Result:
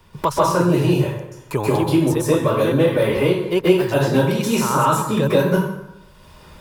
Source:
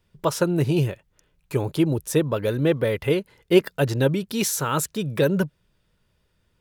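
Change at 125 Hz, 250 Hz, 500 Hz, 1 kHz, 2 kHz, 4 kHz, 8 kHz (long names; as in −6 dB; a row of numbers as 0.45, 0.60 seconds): +4.0, +5.5, +5.5, +11.0, +5.0, +3.5, 0.0 decibels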